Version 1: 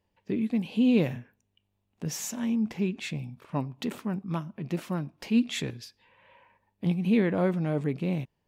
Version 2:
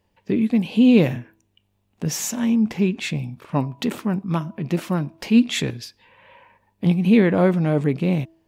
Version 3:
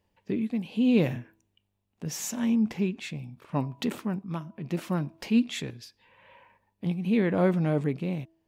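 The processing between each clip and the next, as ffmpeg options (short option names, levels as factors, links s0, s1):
-af "bandreject=f=326.9:t=h:w=4,bandreject=f=653.8:t=h:w=4,bandreject=f=980.7:t=h:w=4,volume=2.66"
-af "tremolo=f=0.79:d=0.48,volume=0.531"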